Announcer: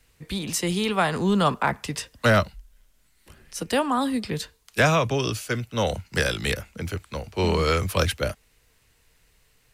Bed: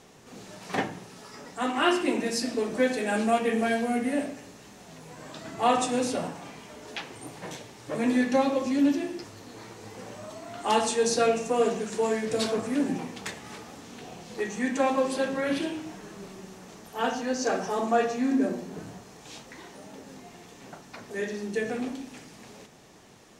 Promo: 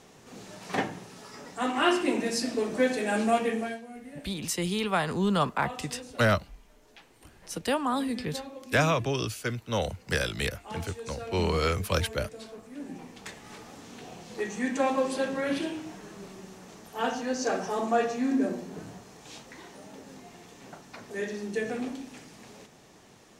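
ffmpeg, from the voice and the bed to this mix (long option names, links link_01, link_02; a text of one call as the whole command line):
ffmpeg -i stem1.wav -i stem2.wav -filter_complex "[0:a]adelay=3950,volume=-4.5dB[link_01];[1:a]volume=15dB,afade=type=out:start_time=3.4:duration=0.41:silence=0.149624,afade=type=in:start_time=12.71:duration=1.12:silence=0.16788[link_02];[link_01][link_02]amix=inputs=2:normalize=0" out.wav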